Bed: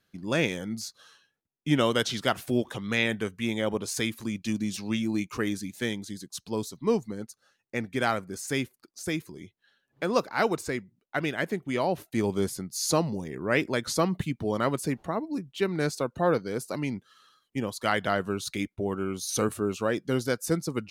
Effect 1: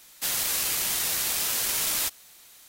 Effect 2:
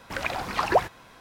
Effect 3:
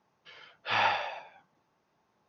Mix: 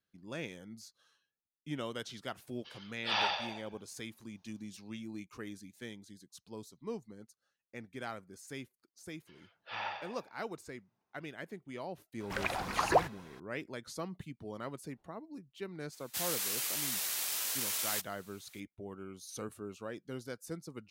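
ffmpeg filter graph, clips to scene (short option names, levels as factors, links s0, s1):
-filter_complex "[3:a]asplit=2[s0][s1];[0:a]volume=0.168[s2];[s0]highshelf=f=2800:t=q:w=1.5:g=7[s3];[1:a]highpass=f=530:p=1[s4];[s3]atrim=end=2.28,asetpts=PTS-STARTPTS,volume=0.531,afade=t=in:d=0.004:c=hsin,afade=t=out:st=2.276:d=0.004:c=hsin,adelay=2390[s5];[s1]atrim=end=2.28,asetpts=PTS-STARTPTS,volume=0.237,afade=t=in:d=0.004:c=hsin,afade=t=out:st=2.276:d=0.004:c=hsin,adelay=9010[s6];[2:a]atrim=end=1.2,asetpts=PTS-STARTPTS,volume=0.531,afade=t=in:d=0.004:c=hsin,afade=t=out:st=1.196:d=0.004:c=hsin,adelay=538020S[s7];[s4]atrim=end=2.68,asetpts=PTS-STARTPTS,volume=0.376,afade=t=in:d=0.004:c=hsin,afade=t=out:st=2.676:d=0.004:c=hsin,adelay=15920[s8];[s2][s5][s6][s7][s8]amix=inputs=5:normalize=0"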